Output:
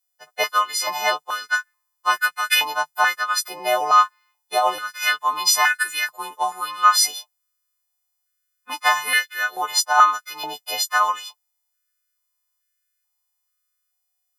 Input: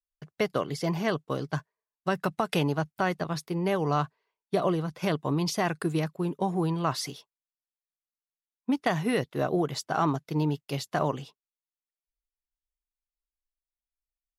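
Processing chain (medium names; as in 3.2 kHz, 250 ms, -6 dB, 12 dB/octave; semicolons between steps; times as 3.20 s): partials quantised in pitch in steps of 3 st; tilt shelf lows -3 dB, about 1.4 kHz; step-sequenced high-pass 2.3 Hz 720–1600 Hz; trim +4 dB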